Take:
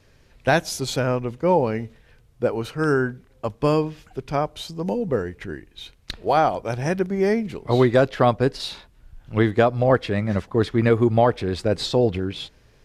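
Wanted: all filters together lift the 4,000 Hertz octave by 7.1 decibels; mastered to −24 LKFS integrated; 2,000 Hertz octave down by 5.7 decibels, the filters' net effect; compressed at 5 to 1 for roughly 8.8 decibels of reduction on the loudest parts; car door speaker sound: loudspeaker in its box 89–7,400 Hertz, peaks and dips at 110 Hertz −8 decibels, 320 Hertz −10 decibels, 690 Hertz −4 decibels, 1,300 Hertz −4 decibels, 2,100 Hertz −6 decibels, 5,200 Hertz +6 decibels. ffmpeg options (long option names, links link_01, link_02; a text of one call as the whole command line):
ffmpeg -i in.wav -af "equalizer=frequency=2000:width_type=o:gain=-6,equalizer=frequency=4000:width_type=o:gain=8,acompressor=threshold=-22dB:ratio=5,highpass=89,equalizer=frequency=110:width_type=q:width=4:gain=-8,equalizer=frequency=320:width_type=q:width=4:gain=-10,equalizer=frequency=690:width_type=q:width=4:gain=-4,equalizer=frequency=1300:width_type=q:width=4:gain=-4,equalizer=frequency=2100:width_type=q:width=4:gain=-6,equalizer=frequency=5200:width_type=q:width=4:gain=6,lowpass=frequency=7400:width=0.5412,lowpass=frequency=7400:width=1.3066,volume=5.5dB" out.wav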